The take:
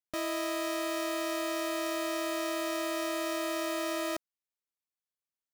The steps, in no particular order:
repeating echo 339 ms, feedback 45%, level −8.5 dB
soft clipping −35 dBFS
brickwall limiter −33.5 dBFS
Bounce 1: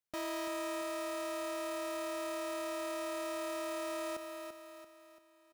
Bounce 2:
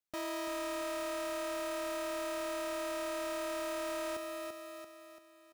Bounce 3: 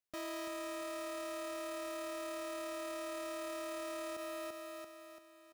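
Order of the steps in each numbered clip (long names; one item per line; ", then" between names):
soft clipping, then repeating echo, then brickwall limiter
repeating echo, then soft clipping, then brickwall limiter
repeating echo, then brickwall limiter, then soft clipping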